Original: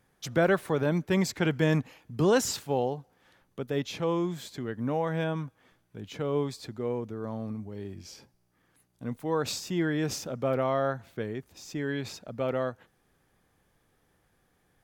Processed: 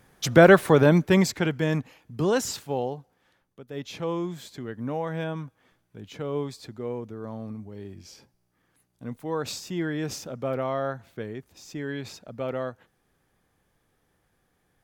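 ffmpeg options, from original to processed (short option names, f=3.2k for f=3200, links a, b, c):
-af "volume=20dB,afade=t=out:st=0.78:d=0.75:silence=0.298538,afade=t=out:st=2.94:d=0.71:silence=0.298538,afade=t=in:st=3.65:d=0.29:silence=0.316228"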